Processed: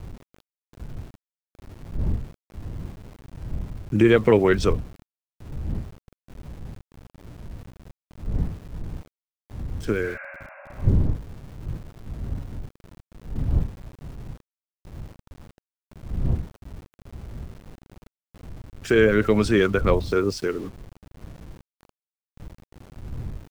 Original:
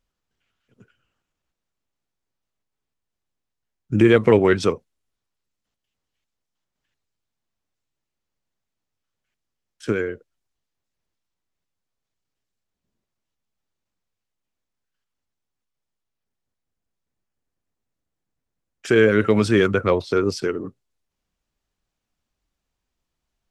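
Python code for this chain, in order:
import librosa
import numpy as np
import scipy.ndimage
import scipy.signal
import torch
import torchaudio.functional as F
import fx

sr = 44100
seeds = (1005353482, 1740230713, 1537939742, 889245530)

y = fx.dmg_wind(x, sr, seeds[0], corner_hz=95.0, level_db=-29.0)
y = np.where(np.abs(y) >= 10.0 ** (-39.0 / 20.0), y, 0.0)
y = fx.spec_repair(y, sr, seeds[1], start_s=10.06, length_s=0.9, low_hz=540.0, high_hz=2800.0, source='both')
y = y * librosa.db_to_amplitude(-2.0)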